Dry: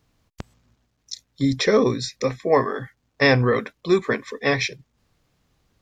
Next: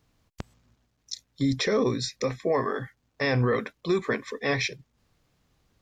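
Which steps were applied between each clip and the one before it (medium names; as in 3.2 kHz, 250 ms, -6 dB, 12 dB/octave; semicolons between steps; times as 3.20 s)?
peak limiter -14 dBFS, peak gain reduction 9.5 dB; trim -2 dB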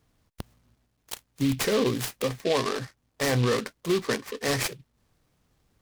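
delay time shaken by noise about 3 kHz, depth 0.078 ms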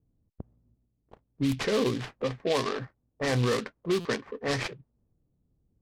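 level-controlled noise filter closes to 330 Hz, open at -19.5 dBFS; buffer glitch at 4.00 s, samples 256, times 8; trim -2 dB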